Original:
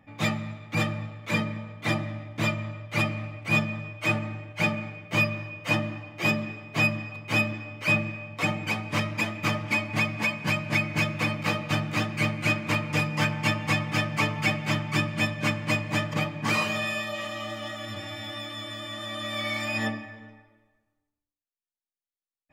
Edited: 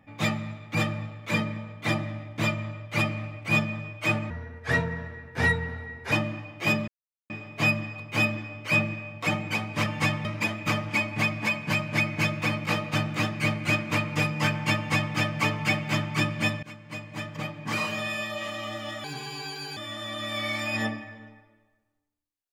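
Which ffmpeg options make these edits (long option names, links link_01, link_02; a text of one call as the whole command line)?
ffmpeg -i in.wav -filter_complex "[0:a]asplit=9[link_01][link_02][link_03][link_04][link_05][link_06][link_07][link_08][link_09];[link_01]atrim=end=4.304[link_10];[link_02]atrim=start=4.3:end=5.7,asetpts=PTS-STARTPTS,asetrate=33957,aresample=44100[link_11];[link_03]atrim=start=5.696:end=6.46,asetpts=PTS-STARTPTS,afade=type=out:start_time=0.76:duration=0.004:curve=hsin,apad=pad_dur=0.42[link_12];[link_04]atrim=start=6.46:end=9.022,asetpts=PTS-STARTPTS,afade=type=in:duration=0.004:curve=hsin[link_13];[link_05]atrim=start=13.528:end=13.922[link_14];[link_06]atrim=start=9.018:end=15.4,asetpts=PTS-STARTPTS,afade=type=out:start_time=6.378:duration=0.004:curve=hsin:silence=0.0891251[link_15];[link_07]atrim=start=15.4:end=17.814,asetpts=PTS-STARTPTS,afade=type=in:duration=1.83:silence=0.0891251[link_16];[link_08]atrim=start=17.81:end=18.78,asetpts=PTS-STARTPTS,asetrate=58653,aresample=44100,atrim=end_sample=32163,asetpts=PTS-STARTPTS[link_17];[link_09]atrim=start=18.776[link_18];[link_10][link_11]acrossfade=duration=0.004:curve1=hsin:curve2=hsin[link_19];[link_12][link_13]concat=n=2:v=0:a=1[link_20];[link_19][link_20]acrossfade=duration=0.004:curve1=hsin:curve2=hsin[link_21];[link_21][link_14]acrossfade=duration=0.004:curve1=hsin:curve2=hsin[link_22];[link_15][link_16]concat=n=2:v=0:a=1[link_23];[link_22][link_23]acrossfade=duration=0.004:curve1=hsin:curve2=hsin[link_24];[link_24][link_17]acrossfade=duration=0.004:curve1=hsin:curve2=hsin[link_25];[link_25][link_18]acrossfade=duration=0.004:curve1=hsin:curve2=hsin" out.wav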